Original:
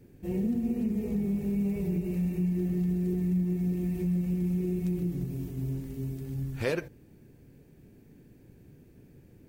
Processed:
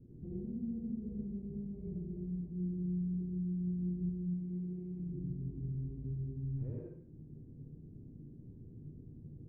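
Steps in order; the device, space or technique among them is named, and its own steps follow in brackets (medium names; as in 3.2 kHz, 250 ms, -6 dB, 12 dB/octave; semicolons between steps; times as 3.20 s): 4.26–5.00 s: tilt EQ +3.5 dB/octave; television next door (compression 4:1, threshold -42 dBFS, peak gain reduction 15 dB; low-pass 270 Hz 12 dB/octave; reverberation RT60 0.60 s, pre-delay 68 ms, DRR -4.5 dB); trim -1 dB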